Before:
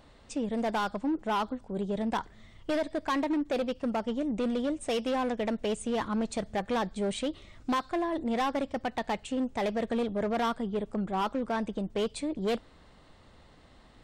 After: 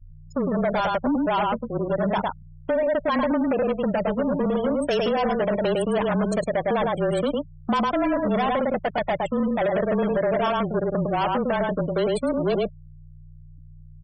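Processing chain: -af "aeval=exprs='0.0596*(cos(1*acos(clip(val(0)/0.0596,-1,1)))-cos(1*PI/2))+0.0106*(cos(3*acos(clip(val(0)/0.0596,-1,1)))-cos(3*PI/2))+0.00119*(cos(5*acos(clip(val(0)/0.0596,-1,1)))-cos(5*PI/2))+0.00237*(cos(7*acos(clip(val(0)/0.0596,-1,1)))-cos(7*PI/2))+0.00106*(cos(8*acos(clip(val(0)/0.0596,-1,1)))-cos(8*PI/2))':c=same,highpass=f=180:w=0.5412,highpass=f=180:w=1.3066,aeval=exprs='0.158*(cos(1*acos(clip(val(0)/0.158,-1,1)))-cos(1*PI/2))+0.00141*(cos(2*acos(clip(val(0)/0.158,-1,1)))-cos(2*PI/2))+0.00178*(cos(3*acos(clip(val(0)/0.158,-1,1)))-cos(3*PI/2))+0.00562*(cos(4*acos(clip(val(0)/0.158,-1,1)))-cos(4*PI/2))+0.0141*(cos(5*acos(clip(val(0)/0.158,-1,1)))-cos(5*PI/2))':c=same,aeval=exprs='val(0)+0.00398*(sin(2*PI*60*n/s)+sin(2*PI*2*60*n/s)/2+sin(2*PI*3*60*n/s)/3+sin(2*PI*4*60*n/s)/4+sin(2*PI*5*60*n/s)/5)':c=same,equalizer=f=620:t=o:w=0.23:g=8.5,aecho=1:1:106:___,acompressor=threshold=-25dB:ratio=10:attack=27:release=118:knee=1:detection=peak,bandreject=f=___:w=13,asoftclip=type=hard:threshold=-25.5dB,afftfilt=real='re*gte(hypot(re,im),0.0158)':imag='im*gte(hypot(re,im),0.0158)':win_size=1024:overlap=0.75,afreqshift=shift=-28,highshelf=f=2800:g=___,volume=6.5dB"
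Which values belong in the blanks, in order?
0.631, 3800, 2.5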